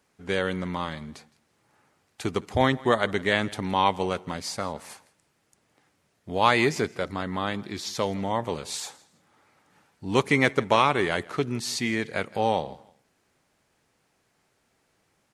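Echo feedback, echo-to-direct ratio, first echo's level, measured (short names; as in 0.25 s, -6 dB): 25%, -21.5 dB, -22.0 dB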